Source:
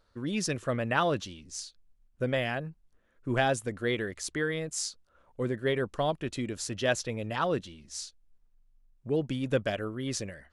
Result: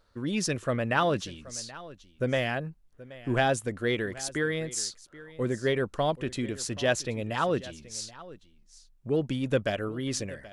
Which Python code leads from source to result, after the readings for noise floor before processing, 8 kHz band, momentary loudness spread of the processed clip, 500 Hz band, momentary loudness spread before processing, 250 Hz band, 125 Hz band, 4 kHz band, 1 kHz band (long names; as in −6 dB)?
−68 dBFS, +2.0 dB, 14 LU, +2.0 dB, 12 LU, +2.0 dB, +2.0 dB, +2.0 dB, +1.5 dB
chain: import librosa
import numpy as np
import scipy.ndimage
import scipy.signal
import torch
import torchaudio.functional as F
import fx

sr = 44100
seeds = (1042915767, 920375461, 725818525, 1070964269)

p1 = 10.0 ** (-22.0 / 20.0) * np.tanh(x / 10.0 ** (-22.0 / 20.0))
p2 = x + (p1 * librosa.db_to_amplitude(-11.0))
y = p2 + 10.0 ** (-18.5 / 20.0) * np.pad(p2, (int(778 * sr / 1000.0), 0))[:len(p2)]